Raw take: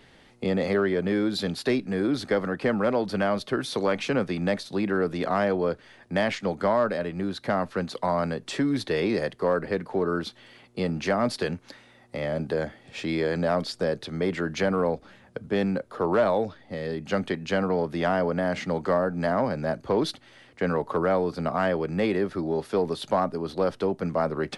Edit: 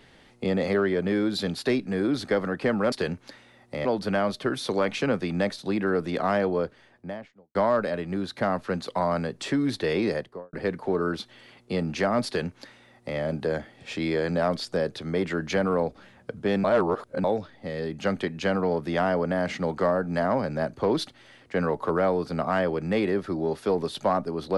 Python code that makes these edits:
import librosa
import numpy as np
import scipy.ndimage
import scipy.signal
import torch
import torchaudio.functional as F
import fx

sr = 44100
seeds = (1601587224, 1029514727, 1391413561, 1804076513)

y = fx.studio_fade_out(x, sr, start_s=5.49, length_s=1.13)
y = fx.studio_fade_out(y, sr, start_s=9.14, length_s=0.46)
y = fx.edit(y, sr, fx.duplicate(start_s=11.33, length_s=0.93, to_s=2.92),
    fx.reverse_span(start_s=15.71, length_s=0.6), tone=tone)